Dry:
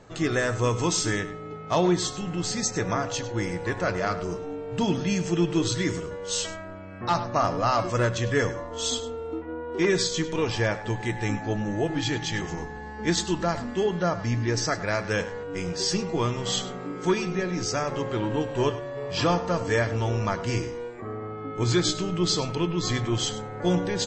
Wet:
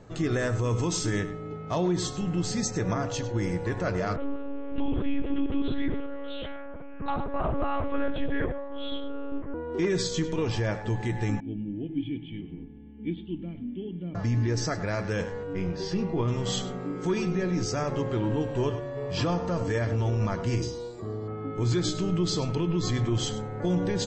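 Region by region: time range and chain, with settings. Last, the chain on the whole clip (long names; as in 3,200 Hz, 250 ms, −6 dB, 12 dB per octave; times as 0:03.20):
0:04.16–0:09.54: high-frequency loss of the air 98 metres + one-pitch LPC vocoder at 8 kHz 280 Hz
0:11.40–0:14.15: formant resonators in series i + high-shelf EQ 2,900 Hz +8 dB
0:15.53–0:16.28: high-frequency loss of the air 190 metres + double-tracking delay 26 ms −11 dB
0:20.62–0:21.28: high shelf with overshoot 3,100 Hz +10.5 dB, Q 3 + notch comb filter 260 Hz
whole clip: low-shelf EQ 460 Hz +8.5 dB; brickwall limiter −13.5 dBFS; level −4.5 dB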